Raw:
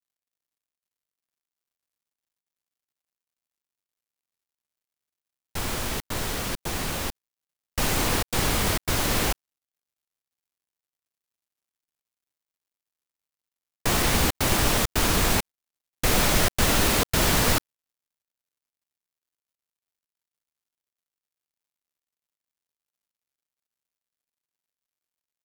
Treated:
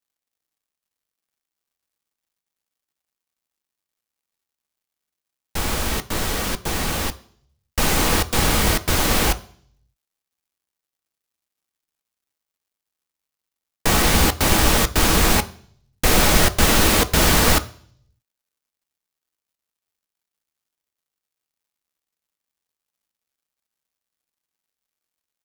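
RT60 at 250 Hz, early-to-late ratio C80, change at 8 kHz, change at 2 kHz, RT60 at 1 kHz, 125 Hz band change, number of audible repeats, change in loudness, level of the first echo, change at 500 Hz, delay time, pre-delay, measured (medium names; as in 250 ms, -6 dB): 0.70 s, 22.5 dB, +5.0 dB, +5.5 dB, 0.50 s, +5.0 dB, no echo, +5.5 dB, no echo, +5.5 dB, no echo, 3 ms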